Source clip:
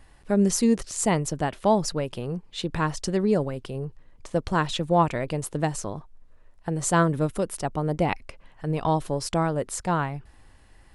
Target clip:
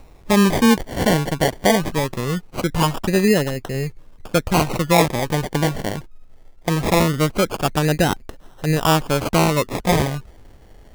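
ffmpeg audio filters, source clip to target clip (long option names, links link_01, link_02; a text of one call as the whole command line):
ffmpeg -i in.wav -af "alimiter=limit=-14dB:level=0:latency=1:release=412,acrusher=samples=27:mix=1:aa=0.000001:lfo=1:lforange=16.2:lforate=0.21,volume=8dB" out.wav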